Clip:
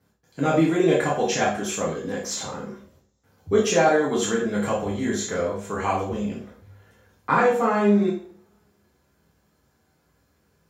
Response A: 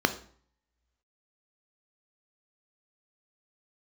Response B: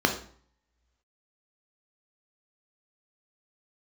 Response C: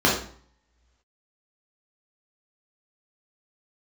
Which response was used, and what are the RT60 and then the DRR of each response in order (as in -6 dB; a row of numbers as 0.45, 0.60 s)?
C; 0.50, 0.50, 0.50 s; 8.5, 3.5, -5.0 dB